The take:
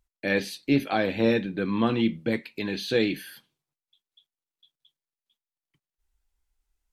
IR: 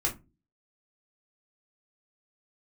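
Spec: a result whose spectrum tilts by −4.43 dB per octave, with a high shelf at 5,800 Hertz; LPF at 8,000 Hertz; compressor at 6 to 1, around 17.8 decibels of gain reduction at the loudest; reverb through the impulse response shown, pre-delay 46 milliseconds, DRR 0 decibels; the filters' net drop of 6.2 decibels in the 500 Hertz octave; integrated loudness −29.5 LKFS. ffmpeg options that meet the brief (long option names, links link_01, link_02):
-filter_complex "[0:a]lowpass=8000,equalizer=frequency=500:width_type=o:gain=-7.5,highshelf=frequency=5800:gain=-4,acompressor=threshold=-40dB:ratio=6,asplit=2[link_01][link_02];[1:a]atrim=start_sample=2205,adelay=46[link_03];[link_02][link_03]afir=irnorm=-1:irlink=0,volume=-6.5dB[link_04];[link_01][link_04]amix=inputs=2:normalize=0,volume=10dB"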